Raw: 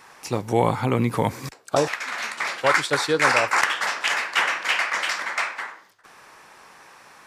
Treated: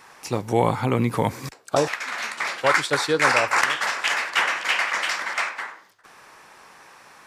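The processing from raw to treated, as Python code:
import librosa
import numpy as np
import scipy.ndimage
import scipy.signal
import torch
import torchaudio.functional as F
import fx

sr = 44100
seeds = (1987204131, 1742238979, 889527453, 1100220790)

y = fx.reverse_delay(x, sr, ms=289, wet_db=-14, at=(3.19, 5.52))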